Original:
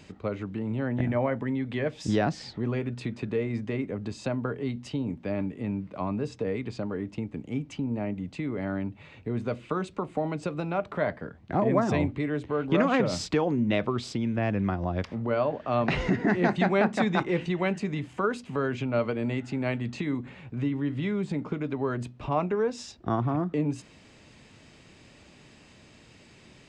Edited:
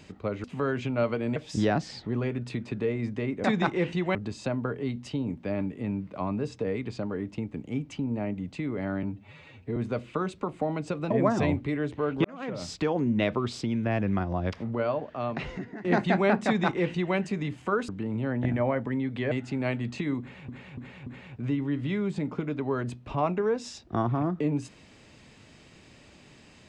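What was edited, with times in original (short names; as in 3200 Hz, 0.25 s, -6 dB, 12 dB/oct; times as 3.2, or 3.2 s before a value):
0.44–1.87 swap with 18.4–19.32
8.83–9.32 stretch 1.5×
10.66–11.62 cut
12.76–13.55 fade in
15.12–16.36 fade out, to -20.5 dB
16.97–17.68 copy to 3.95
20.2–20.49 loop, 4 plays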